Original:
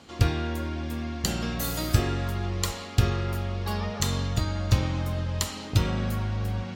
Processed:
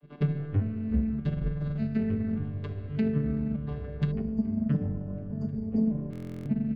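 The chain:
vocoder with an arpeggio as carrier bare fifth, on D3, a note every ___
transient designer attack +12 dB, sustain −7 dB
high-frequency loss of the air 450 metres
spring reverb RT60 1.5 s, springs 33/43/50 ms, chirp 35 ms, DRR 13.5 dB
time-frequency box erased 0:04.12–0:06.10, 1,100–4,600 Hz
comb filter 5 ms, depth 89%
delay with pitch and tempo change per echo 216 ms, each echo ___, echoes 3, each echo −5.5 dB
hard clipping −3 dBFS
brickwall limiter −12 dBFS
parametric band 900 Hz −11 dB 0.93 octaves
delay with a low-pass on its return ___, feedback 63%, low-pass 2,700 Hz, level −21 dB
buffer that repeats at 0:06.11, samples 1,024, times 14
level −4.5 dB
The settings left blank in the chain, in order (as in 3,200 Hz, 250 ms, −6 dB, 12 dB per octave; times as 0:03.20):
590 ms, −7 semitones, 730 ms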